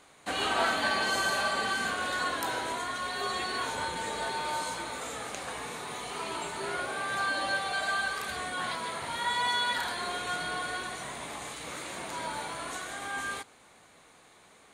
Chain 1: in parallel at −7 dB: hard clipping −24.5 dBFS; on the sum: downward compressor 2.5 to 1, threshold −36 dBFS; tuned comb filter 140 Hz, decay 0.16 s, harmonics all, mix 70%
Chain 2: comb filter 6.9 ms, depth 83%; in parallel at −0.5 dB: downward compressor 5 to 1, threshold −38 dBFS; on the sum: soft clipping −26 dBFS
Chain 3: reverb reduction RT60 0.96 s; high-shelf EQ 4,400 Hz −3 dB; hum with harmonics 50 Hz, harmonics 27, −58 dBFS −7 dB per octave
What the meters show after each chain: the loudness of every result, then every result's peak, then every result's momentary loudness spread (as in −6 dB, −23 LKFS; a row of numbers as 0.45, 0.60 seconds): −41.0, −30.5, −34.5 LKFS; −28.0, −26.0, −17.5 dBFS; 6, 5, 11 LU